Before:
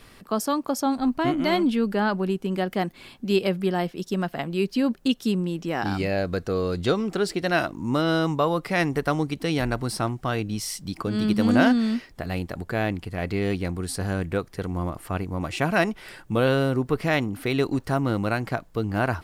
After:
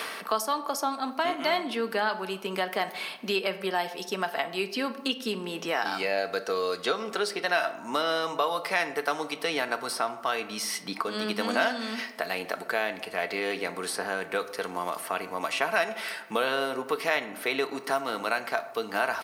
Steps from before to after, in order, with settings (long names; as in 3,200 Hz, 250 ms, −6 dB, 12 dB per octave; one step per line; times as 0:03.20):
reversed playback
upward compression, threshold −24 dBFS
reversed playback
high-pass filter 630 Hz 12 dB per octave
notch filter 7,400 Hz, Q 9.8
comb filter 4.5 ms, depth 33%
on a send at −10 dB: convolution reverb RT60 0.80 s, pre-delay 6 ms
on the sum: multiband upward and downward compressor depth 70%